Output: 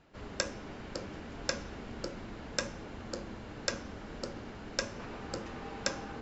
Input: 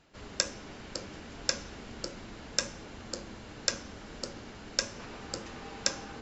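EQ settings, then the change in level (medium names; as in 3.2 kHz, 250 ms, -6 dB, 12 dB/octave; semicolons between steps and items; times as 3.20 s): treble shelf 3.4 kHz -11.5 dB; +2.0 dB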